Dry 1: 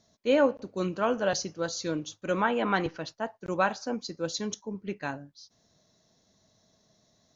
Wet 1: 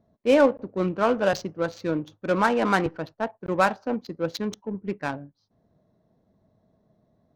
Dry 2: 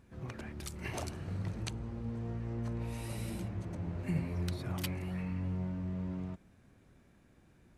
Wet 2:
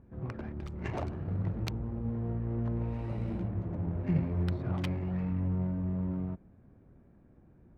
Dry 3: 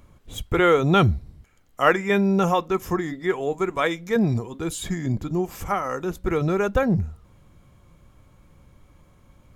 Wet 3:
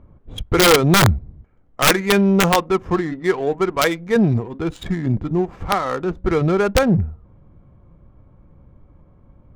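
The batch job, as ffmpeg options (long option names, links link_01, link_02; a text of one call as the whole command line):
ffmpeg -i in.wav -af "adynamicsmooth=sensitivity=4.5:basefreq=970,aeval=exprs='(mod(3.35*val(0)+1,2)-1)/3.35':channel_layout=same,volume=5dB" out.wav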